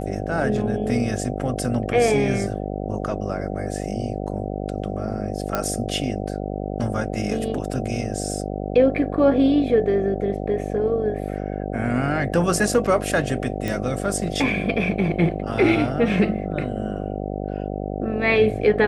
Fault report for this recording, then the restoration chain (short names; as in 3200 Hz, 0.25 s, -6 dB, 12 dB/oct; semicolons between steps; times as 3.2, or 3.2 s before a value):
buzz 50 Hz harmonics 15 -28 dBFS
5.55 pop -8 dBFS
13.68 pop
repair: de-click; de-hum 50 Hz, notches 15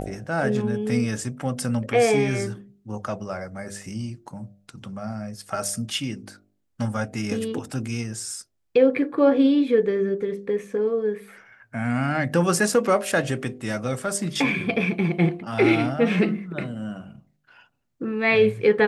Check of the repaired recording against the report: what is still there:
none